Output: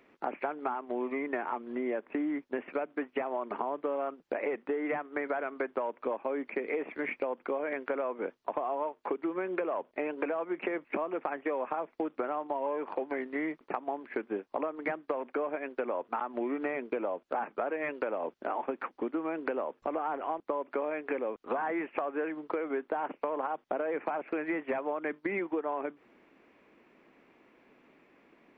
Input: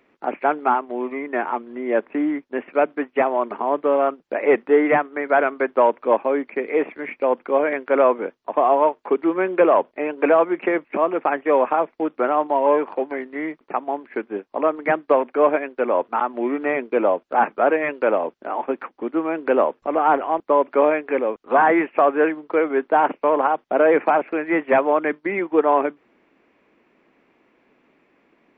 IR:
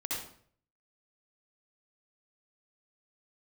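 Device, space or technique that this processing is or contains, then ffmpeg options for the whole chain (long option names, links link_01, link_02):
serial compression, peaks first: -af "acompressor=threshold=-23dB:ratio=6,acompressor=threshold=-29dB:ratio=3,volume=-1.5dB"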